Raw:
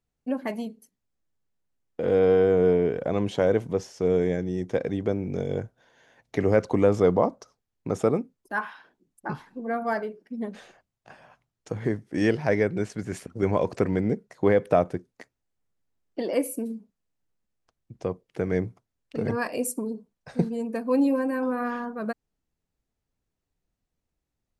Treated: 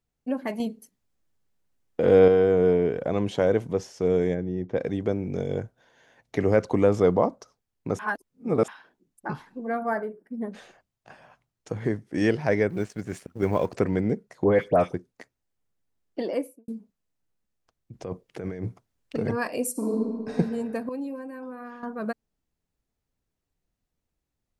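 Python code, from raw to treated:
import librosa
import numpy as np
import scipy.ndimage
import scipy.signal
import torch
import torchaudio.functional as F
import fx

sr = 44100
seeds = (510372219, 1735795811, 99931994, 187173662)

y = fx.spacing_loss(x, sr, db_at_10k=28, at=(4.33, 4.76), fade=0.02)
y = fx.band_shelf(y, sr, hz=4000.0, db=-12.5, octaves=1.7, at=(9.81, 10.52))
y = fx.law_mismatch(y, sr, coded='A', at=(12.69, 13.74))
y = fx.dispersion(y, sr, late='highs', ms=104.0, hz=2100.0, at=(14.44, 14.94))
y = fx.studio_fade_out(y, sr, start_s=16.2, length_s=0.48)
y = fx.over_compress(y, sr, threshold_db=-32.0, ratio=-1.0, at=(17.93, 19.17))
y = fx.reverb_throw(y, sr, start_s=19.71, length_s=0.61, rt60_s=2.0, drr_db=-5.5)
y = fx.edit(y, sr, fx.clip_gain(start_s=0.6, length_s=1.68, db=5.0),
    fx.reverse_span(start_s=7.99, length_s=0.69),
    fx.clip_gain(start_s=20.89, length_s=0.94, db=-11.5), tone=tone)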